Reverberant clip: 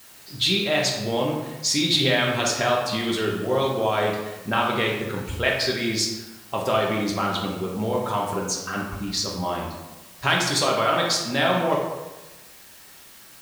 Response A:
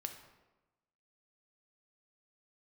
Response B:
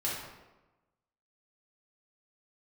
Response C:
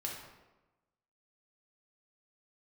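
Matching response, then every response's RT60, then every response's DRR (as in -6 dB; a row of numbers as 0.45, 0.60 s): C; 1.1, 1.1, 1.1 s; 5.0, -7.0, -2.5 dB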